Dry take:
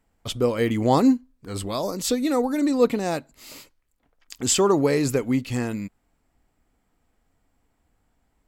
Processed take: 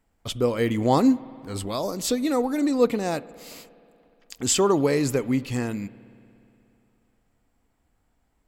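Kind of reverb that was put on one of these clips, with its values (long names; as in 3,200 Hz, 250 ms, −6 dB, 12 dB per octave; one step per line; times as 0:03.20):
spring reverb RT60 2.9 s, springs 59 ms, chirp 70 ms, DRR 19 dB
level −1 dB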